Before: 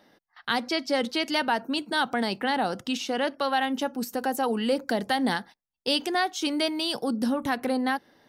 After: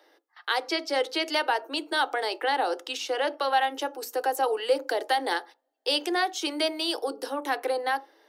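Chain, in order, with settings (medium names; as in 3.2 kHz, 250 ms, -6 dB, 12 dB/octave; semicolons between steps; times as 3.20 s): steep high-pass 290 Hz 96 dB/octave; on a send at -15 dB: dynamic bell 640 Hz, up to +7 dB, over -41 dBFS, Q 1.7 + reverberation RT60 0.30 s, pre-delay 3 ms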